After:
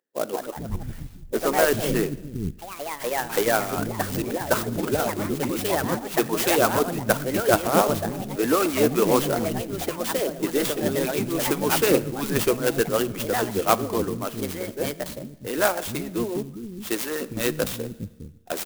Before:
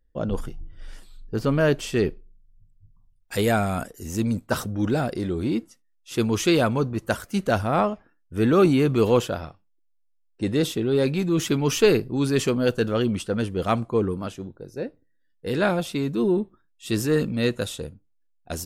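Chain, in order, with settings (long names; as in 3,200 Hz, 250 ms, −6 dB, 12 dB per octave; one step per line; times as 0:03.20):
delay with pitch and tempo change per echo 205 ms, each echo +3 semitones, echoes 3, each echo −6 dB
multiband delay without the direct sound highs, lows 410 ms, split 250 Hz
harmonic and percussive parts rebalanced harmonic −14 dB
four-comb reverb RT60 1.2 s, combs from 27 ms, DRR 17.5 dB
converter with an unsteady clock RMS 0.06 ms
level +5 dB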